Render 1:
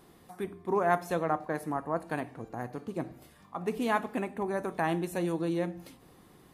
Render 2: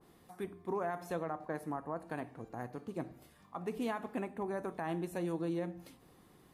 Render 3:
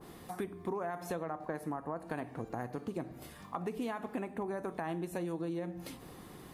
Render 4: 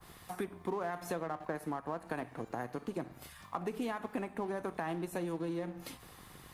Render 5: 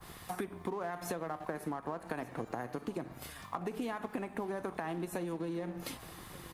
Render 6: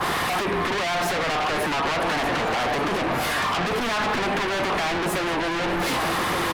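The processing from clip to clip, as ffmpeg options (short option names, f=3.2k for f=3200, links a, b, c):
-af "alimiter=limit=-22dB:level=0:latency=1:release=82,adynamicequalizer=threshold=0.00501:dfrequency=1800:dqfactor=0.7:tfrequency=1800:tqfactor=0.7:attack=5:release=100:ratio=0.375:range=2:mode=cutabove:tftype=highshelf,volume=-5dB"
-af "acompressor=threshold=-47dB:ratio=5,volume=11.5dB"
-filter_complex "[0:a]acrossover=split=140|870|2600[a][b][c][d];[a]alimiter=level_in=29.5dB:limit=-24dB:level=0:latency=1:release=278,volume=-29.5dB[e];[b]aeval=exprs='sgn(val(0))*max(abs(val(0))-0.00237,0)':c=same[f];[e][f][c][d]amix=inputs=4:normalize=0,volume=1.5dB"
-af "acompressor=threshold=-38dB:ratio=6,aecho=1:1:1177:0.1,volume=4.5dB"
-filter_complex "[0:a]asplit=2[a][b];[b]highpass=f=720:p=1,volume=34dB,asoftclip=type=tanh:threshold=-20.5dB[c];[a][c]amix=inputs=2:normalize=0,lowpass=f=1.2k:p=1,volume=-6dB,aecho=1:1:617:0.119,aeval=exprs='0.0891*sin(PI/2*3.16*val(0)/0.0891)':c=same"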